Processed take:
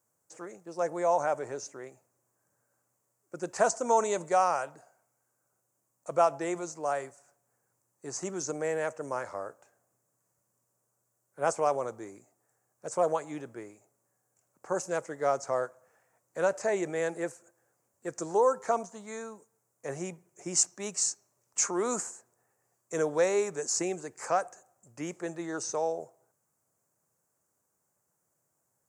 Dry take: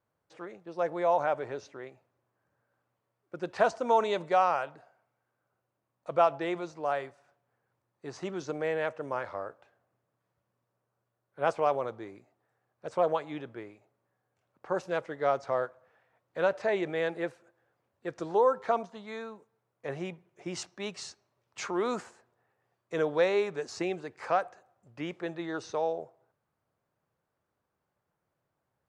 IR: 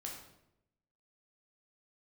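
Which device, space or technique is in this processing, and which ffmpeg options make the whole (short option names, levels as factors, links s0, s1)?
budget condenser microphone: -af "highpass=100,highshelf=f=5100:t=q:w=3:g=13"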